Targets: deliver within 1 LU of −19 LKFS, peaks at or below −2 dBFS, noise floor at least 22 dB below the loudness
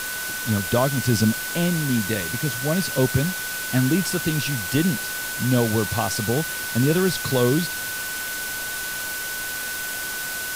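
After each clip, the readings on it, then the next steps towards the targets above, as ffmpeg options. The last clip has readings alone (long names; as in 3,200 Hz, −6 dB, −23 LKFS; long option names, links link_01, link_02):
interfering tone 1,500 Hz; level of the tone −30 dBFS; background noise floor −29 dBFS; target noise floor −45 dBFS; integrated loudness −23.0 LKFS; sample peak −7.5 dBFS; target loudness −19.0 LKFS
→ -af "bandreject=frequency=1500:width=30"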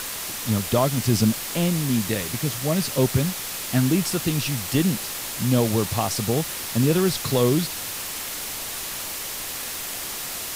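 interfering tone none found; background noise floor −32 dBFS; target noise floor −46 dBFS
→ -af "afftdn=noise_reduction=14:noise_floor=-32"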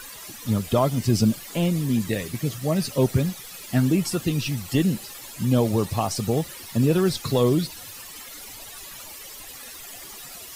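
background noise floor −41 dBFS; target noise floor −46 dBFS
→ -af "afftdn=noise_reduction=6:noise_floor=-41"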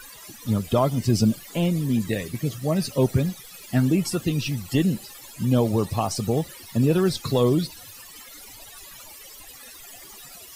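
background noise floor −44 dBFS; target noise floor −46 dBFS
→ -af "afftdn=noise_reduction=6:noise_floor=-44"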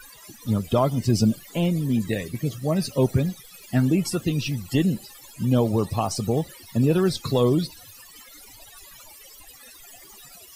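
background noise floor −47 dBFS; integrated loudness −24.0 LKFS; sample peak −9.0 dBFS; target loudness −19.0 LKFS
→ -af "volume=5dB"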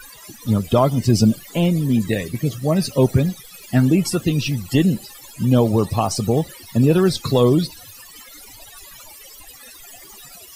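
integrated loudness −19.0 LKFS; sample peak −4.0 dBFS; background noise floor −42 dBFS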